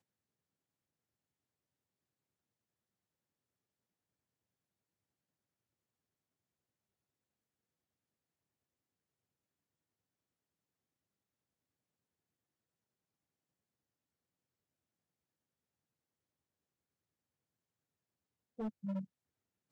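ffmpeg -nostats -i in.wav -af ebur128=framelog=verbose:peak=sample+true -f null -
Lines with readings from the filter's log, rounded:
Integrated loudness:
  I:         -43.3 LUFS
  Threshold: -53.8 LUFS
Loudness range:
  LRA:        17.6 LU
  Threshold: -70.2 LUFS
  LRA low:   -66.6 LUFS
  LRA high:  -49.0 LUFS
Sample peak:
  Peak:      -35.7 dBFS
True peak:
  Peak:      -35.7 dBFS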